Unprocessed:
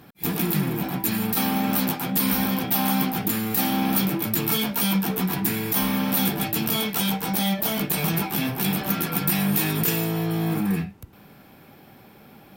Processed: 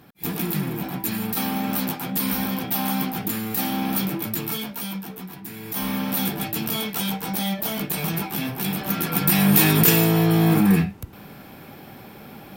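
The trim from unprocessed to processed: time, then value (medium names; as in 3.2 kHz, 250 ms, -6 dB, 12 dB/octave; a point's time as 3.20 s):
4.23 s -2 dB
5.43 s -14 dB
5.89 s -2 dB
8.76 s -2 dB
9.61 s +7 dB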